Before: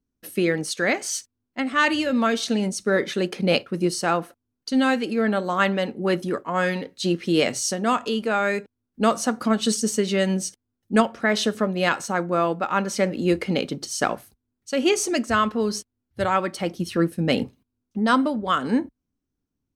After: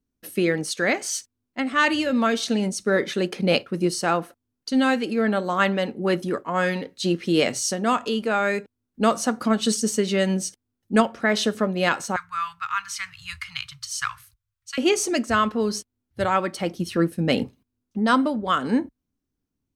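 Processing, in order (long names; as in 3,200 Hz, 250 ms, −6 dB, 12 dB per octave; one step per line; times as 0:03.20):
0:12.16–0:14.78: Chebyshev band-stop filter 120–1,100 Hz, order 4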